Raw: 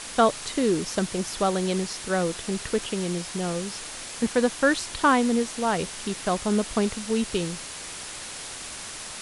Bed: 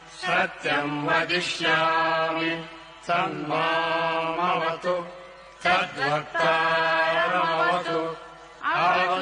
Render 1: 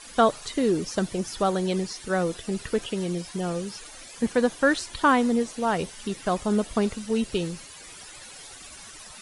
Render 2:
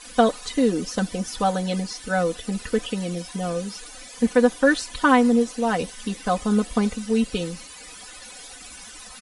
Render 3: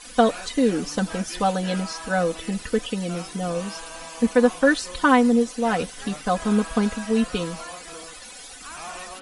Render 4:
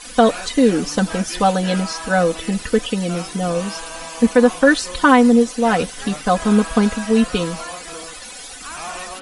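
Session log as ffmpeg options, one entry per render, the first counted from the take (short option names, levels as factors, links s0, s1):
-af "afftdn=nr=13:nf=-38"
-af "aecho=1:1:4:0.85"
-filter_complex "[1:a]volume=0.158[s0];[0:a][s0]amix=inputs=2:normalize=0"
-af "volume=2,alimiter=limit=0.794:level=0:latency=1"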